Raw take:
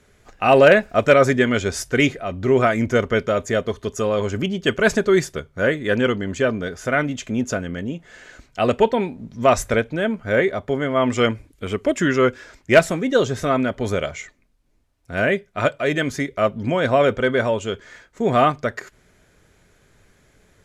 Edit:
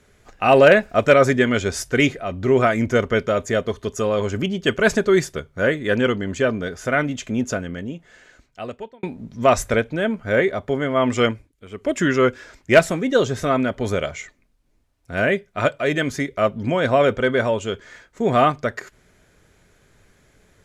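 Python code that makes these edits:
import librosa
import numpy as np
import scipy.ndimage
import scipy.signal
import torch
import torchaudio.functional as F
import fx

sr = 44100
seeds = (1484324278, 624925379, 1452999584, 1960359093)

y = fx.edit(x, sr, fx.fade_out_span(start_s=7.44, length_s=1.59),
    fx.fade_down_up(start_s=11.25, length_s=0.72, db=-13.5, fade_s=0.26), tone=tone)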